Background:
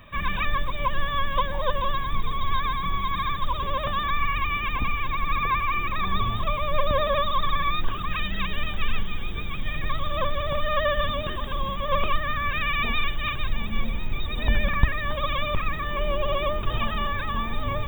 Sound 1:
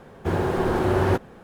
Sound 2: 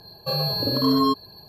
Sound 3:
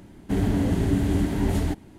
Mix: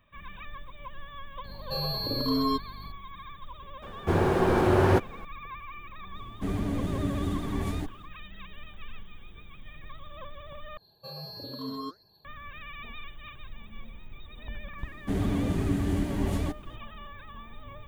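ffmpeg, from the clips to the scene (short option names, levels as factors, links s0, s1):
-filter_complex "[2:a]asplit=2[s0][s1];[3:a]asplit=2[s2][s3];[0:a]volume=0.133[s4];[s0]aeval=exprs='val(0)+0.0141*(sin(2*PI*50*n/s)+sin(2*PI*2*50*n/s)/2+sin(2*PI*3*50*n/s)/3+sin(2*PI*4*50*n/s)/4+sin(2*PI*5*50*n/s)/5)':c=same[s5];[s1]flanger=delay=0.7:depth=9.5:regen=81:speed=1.5:shape=triangular[s6];[s4]asplit=2[s7][s8];[s7]atrim=end=10.774[s9];[s6]atrim=end=1.48,asetpts=PTS-STARTPTS,volume=0.237[s10];[s8]atrim=start=12.246[s11];[s5]atrim=end=1.48,asetpts=PTS-STARTPTS,volume=0.447,afade=t=in:d=0.004:c=hsin,afade=t=out:st=1.476:d=0.004:c=hsin,adelay=1440[s12];[1:a]atrim=end=1.43,asetpts=PTS-STARTPTS,volume=0.944,afade=t=in:d=0.004:c=hsin,afade=t=out:st=1.426:d=0.004:c=hsin,adelay=3820[s13];[s2]atrim=end=1.98,asetpts=PTS-STARTPTS,volume=0.422,afade=t=in:d=0.05,afade=t=out:st=1.93:d=0.05,adelay=6120[s14];[s3]atrim=end=1.98,asetpts=PTS-STARTPTS,volume=0.562,afade=t=in:d=0.004:c=hsin,afade=t=out:st=1.976:d=0.004:c=hsin,adelay=14780[s15];[s9][s10]acrossfade=d=0.004:c1=hsin:c2=hsin[s16];[s16][s11]acrossfade=d=0.004:c1=hsin:c2=hsin[s17];[s17][s12][s13][s14][s15]amix=inputs=5:normalize=0"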